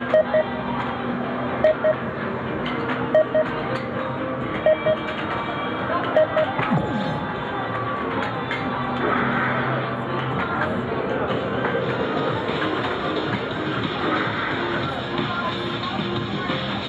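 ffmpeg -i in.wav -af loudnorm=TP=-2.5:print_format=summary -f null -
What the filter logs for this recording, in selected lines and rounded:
Input Integrated:    -23.6 LUFS
Input True Peak:      -7.4 dBTP
Input LRA:             1.4 LU
Input Threshold:     -33.6 LUFS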